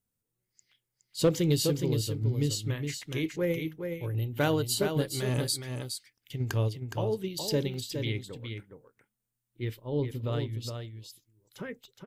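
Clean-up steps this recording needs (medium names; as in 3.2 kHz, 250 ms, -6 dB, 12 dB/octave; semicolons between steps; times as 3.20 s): clip repair -16 dBFS; interpolate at 7.74 s, 1.7 ms; inverse comb 416 ms -6.5 dB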